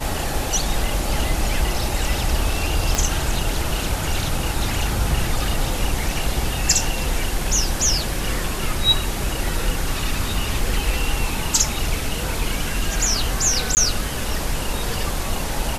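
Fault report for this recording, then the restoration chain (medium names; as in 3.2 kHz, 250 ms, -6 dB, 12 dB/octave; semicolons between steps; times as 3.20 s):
2.95 s: pop -4 dBFS
13.75–13.77 s: dropout 19 ms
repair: de-click; interpolate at 13.75 s, 19 ms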